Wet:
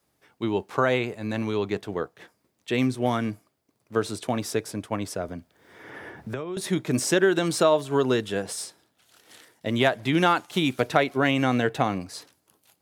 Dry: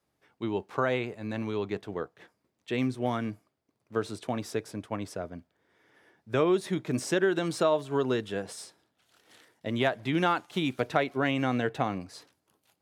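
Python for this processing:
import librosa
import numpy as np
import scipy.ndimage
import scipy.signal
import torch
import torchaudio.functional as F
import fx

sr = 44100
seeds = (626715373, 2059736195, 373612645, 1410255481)

y = fx.high_shelf(x, sr, hz=5800.0, db=7.5)
y = fx.band_squash(y, sr, depth_pct=100, at=(5.28, 6.57))
y = y * 10.0 ** (5.0 / 20.0)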